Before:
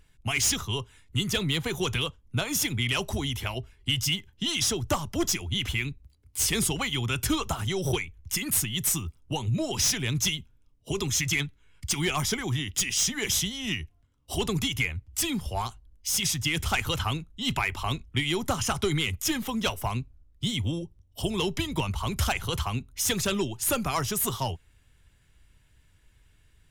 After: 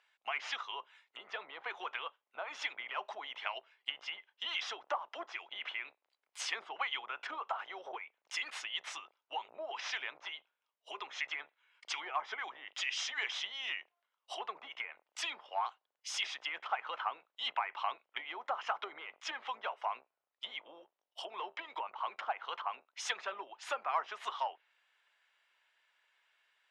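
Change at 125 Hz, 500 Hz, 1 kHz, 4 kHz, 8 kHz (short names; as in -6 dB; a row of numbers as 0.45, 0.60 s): under -40 dB, -13.5 dB, -3.5 dB, -11.5 dB, -22.5 dB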